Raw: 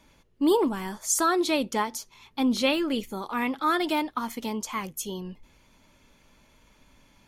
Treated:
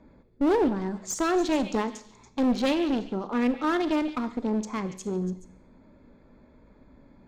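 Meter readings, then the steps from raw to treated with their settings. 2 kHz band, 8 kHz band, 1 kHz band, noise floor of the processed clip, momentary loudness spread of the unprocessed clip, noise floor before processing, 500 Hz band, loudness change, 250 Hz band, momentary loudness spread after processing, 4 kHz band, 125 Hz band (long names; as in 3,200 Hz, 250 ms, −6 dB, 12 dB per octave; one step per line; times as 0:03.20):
−3.5 dB, −7.5 dB, −3.0 dB, −57 dBFS, 11 LU, −61 dBFS, +0.5 dB, −0.5 dB, +2.0 dB, 9 LU, −6.0 dB, can't be measured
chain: adaptive Wiener filter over 15 samples
graphic EQ with 10 bands 250 Hz +5 dB, 500 Hz +4 dB, 1,000 Hz −4 dB, 8,000 Hz +11 dB
in parallel at −0.5 dB: downward compressor, threshold −33 dBFS, peak gain reduction 19.5 dB
on the sum: high-frequency loss of the air 180 metres
tuned comb filter 62 Hz, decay 0.17 s, harmonics all, mix 30%
on a send: echo through a band-pass that steps 142 ms, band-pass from 3,200 Hz, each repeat 0.7 octaves, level −9.5 dB
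on the sum: asymmetric clip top −28 dBFS, bottom −15 dBFS
four-comb reverb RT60 0.68 s, combs from 29 ms, DRR 13 dB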